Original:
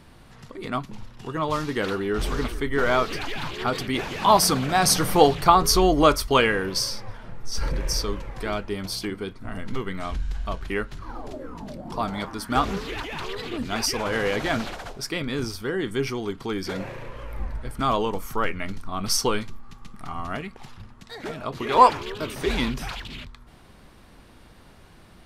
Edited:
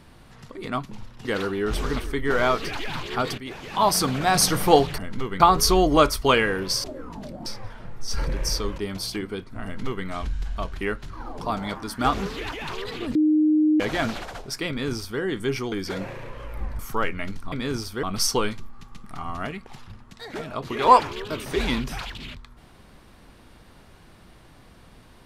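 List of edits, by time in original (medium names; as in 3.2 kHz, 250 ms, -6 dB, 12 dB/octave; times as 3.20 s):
1.25–1.73 s: delete
3.86–4.67 s: fade in, from -12.5 dB
8.22–8.67 s: delete
9.53–9.95 s: copy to 5.46 s
11.29–11.91 s: move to 6.90 s
13.66–14.31 s: bleep 307 Hz -15.5 dBFS
15.20–15.71 s: copy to 18.93 s
16.23–16.51 s: delete
17.58–18.20 s: delete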